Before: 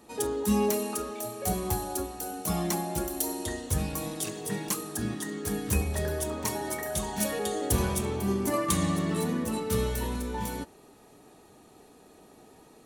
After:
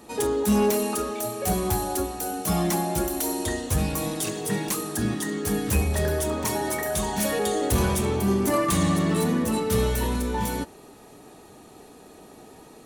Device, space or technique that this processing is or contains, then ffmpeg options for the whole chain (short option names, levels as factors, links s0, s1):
saturation between pre-emphasis and de-emphasis: -af "highshelf=f=3400:g=10,asoftclip=type=tanh:threshold=0.0944,highshelf=f=3400:g=-10,volume=2.24"